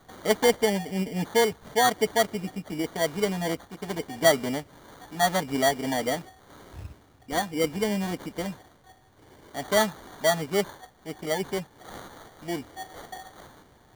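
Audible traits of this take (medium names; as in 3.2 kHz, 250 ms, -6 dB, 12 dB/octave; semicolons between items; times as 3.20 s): aliases and images of a low sample rate 2.6 kHz, jitter 0%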